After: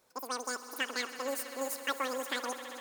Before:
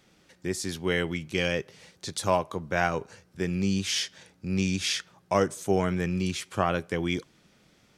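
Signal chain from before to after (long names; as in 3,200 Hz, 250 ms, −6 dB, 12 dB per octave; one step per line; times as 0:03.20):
echo that builds up and dies away 185 ms, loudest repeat 5, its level −17 dB
change of speed 2.84×
level −8.5 dB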